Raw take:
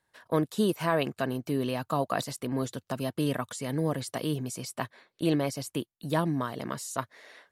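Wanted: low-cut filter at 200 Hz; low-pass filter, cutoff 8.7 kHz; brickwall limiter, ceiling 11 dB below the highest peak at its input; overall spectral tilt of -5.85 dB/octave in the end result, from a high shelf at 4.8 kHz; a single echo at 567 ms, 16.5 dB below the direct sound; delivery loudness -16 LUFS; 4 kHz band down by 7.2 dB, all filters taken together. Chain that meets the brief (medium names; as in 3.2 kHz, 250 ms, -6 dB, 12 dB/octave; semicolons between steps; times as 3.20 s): high-pass 200 Hz; low-pass 8.7 kHz; peaking EQ 4 kHz -5.5 dB; treble shelf 4.8 kHz -9 dB; peak limiter -24 dBFS; delay 567 ms -16.5 dB; trim +20 dB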